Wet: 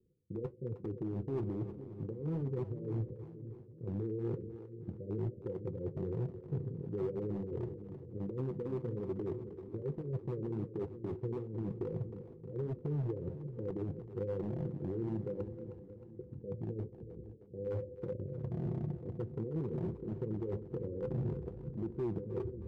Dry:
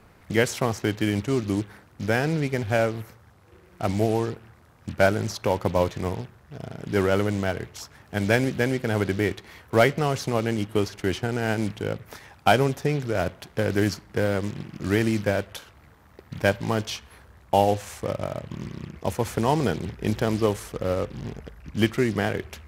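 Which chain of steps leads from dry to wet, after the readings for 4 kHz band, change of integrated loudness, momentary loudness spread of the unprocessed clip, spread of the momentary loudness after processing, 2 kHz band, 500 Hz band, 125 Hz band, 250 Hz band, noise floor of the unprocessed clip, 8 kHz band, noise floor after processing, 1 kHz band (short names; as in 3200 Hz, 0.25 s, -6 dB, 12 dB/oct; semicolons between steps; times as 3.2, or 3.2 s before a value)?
under -35 dB, -14.5 dB, 14 LU, 9 LU, under -35 dB, -14.5 dB, -9.5 dB, -12.5 dB, -54 dBFS, under -40 dB, -53 dBFS, -27.0 dB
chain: switching dead time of 0.097 ms; gate with hold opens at -40 dBFS; low shelf 160 Hz -7 dB; reverse; compressor 10:1, threshold -33 dBFS, peak gain reduction 20 dB; reverse; limiter -32 dBFS, peak gain reduction 11 dB; in parallel at +2 dB: level quantiser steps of 9 dB; on the sum: rippled Chebyshev low-pass 520 Hz, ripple 9 dB; hard clip -37 dBFS, distortion -17 dB; flange 1.1 Hz, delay 2.7 ms, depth 10 ms, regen -50%; split-band echo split 360 Hz, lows 0.491 s, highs 0.312 s, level -11 dB; gain +9.5 dB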